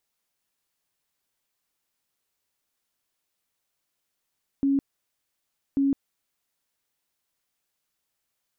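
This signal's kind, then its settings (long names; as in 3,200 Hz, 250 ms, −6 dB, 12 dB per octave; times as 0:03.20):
tone bursts 276 Hz, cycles 44, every 1.14 s, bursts 2, −19 dBFS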